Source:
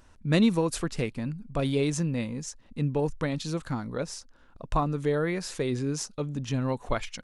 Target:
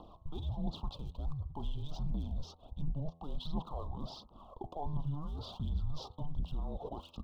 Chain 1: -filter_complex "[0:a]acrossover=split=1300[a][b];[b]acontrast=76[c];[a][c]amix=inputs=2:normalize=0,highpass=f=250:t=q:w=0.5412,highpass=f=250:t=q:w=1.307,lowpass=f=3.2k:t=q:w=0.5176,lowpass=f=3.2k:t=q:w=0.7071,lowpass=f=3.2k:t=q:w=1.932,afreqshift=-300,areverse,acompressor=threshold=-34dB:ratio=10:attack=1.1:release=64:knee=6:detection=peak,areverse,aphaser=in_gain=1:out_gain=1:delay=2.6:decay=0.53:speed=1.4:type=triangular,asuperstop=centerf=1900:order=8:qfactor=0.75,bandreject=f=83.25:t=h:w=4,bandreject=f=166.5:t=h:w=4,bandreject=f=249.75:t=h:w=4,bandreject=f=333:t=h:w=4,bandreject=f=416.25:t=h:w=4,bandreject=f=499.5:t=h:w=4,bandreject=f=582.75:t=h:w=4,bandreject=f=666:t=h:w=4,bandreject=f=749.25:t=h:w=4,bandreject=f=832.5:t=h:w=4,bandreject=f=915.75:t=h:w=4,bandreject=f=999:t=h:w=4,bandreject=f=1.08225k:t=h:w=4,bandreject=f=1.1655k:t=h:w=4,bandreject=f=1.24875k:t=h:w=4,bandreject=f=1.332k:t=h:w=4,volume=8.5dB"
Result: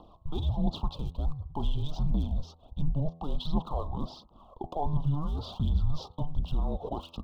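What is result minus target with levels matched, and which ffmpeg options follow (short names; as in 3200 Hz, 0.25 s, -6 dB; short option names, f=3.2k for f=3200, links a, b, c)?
compressor: peak gain reduction -9 dB
-filter_complex "[0:a]acrossover=split=1300[a][b];[b]acontrast=76[c];[a][c]amix=inputs=2:normalize=0,highpass=f=250:t=q:w=0.5412,highpass=f=250:t=q:w=1.307,lowpass=f=3.2k:t=q:w=0.5176,lowpass=f=3.2k:t=q:w=0.7071,lowpass=f=3.2k:t=q:w=1.932,afreqshift=-300,areverse,acompressor=threshold=-44dB:ratio=10:attack=1.1:release=64:knee=6:detection=peak,areverse,aphaser=in_gain=1:out_gain=1:delay=2.6:decay=0.53:speed=1.4:type=triangular,asuperstop=centerf=1900:order=8:qfactor=0.75,bandreject=f=83.25:t=h:w=4,bandreject=f=166.5:t=h:w=4,bandreject=f=249.75:t=h:w=4,bandreject=f=333:t=h:w=4,bandreject=f=416.25:t=h:w=4,bandreject=f=499.5:t=h:w=4,bandreject=f=582.75:t=h:w=4,bandreject=f=666:t=h:w=4,bandreject=f=749.25:t=h:w=4,bandreject=f=832.5:t=h:w=4,bandreject=f=915.75:t=h:w=4,bandreject=f=999:t=h:w=4,bandreject=f=1.08225k:t=h:w=4,bandreject=f=1.1655k:t=h:w=4,bandreject=f=1.24875k:t=h:w=4,bandreject=f=1.332k:t=h:w=4,volume=8.5dB"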